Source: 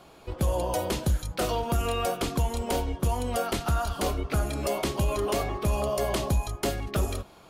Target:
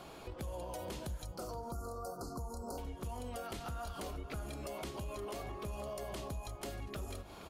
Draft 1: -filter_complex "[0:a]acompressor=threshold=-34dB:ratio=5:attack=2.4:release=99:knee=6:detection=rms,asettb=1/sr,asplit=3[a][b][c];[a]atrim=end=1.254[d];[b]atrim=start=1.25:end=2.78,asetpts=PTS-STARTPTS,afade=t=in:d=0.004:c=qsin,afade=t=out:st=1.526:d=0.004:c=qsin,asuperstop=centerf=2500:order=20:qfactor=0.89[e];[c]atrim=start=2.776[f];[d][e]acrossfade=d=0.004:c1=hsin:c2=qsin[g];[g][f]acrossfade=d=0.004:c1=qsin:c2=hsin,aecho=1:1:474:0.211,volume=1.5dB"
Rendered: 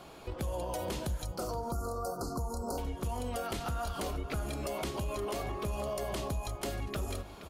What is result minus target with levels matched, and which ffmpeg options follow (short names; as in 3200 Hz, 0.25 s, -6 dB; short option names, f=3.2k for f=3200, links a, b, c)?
compressor: peak gain reduction -7 dB
-filter_complex "[0:a]acompressor=threshold=-42.5dB:ratio=5:attack=2.4:release=99:knee=6:detection=rms,asettb=1/sr,asplit=3[a][b][c];[a]atrim=end=1.254[d];[b]atrim=start=1.25:end=2.78,asetpts=PTS-STARTPTS,afade=t=in:d=0.004:c=qsin,afade=t=out:st=1.526:d=0.004:c=qsin,asuperstop=centerf=2500:order=20:qfactor=0.89[e];[c]atrim=start=2.776[f];[d][e]acrossfade=d=0.004:c1=hsin:c2=qsin[g];[g][f]acrossfade=d=0.004:c1=qsin:c2=hsin,aecho=1:1:474:0.211,volume=1.5dB"